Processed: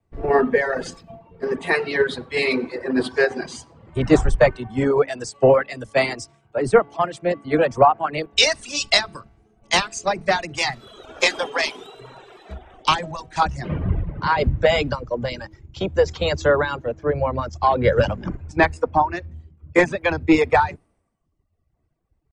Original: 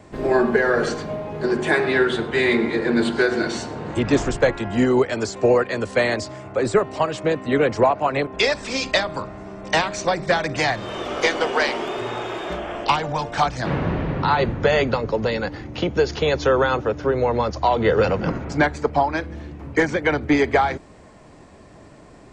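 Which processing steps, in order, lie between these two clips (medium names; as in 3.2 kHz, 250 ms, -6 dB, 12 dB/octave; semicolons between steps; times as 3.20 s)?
hum notches 50/100/150/200/250 Hz; reverb removal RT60 1.3 s; bass shelf 120 Hz +8.5 dB; pitch shift +1.5 st; three bands expanded up and down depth 100%; trim -1 dB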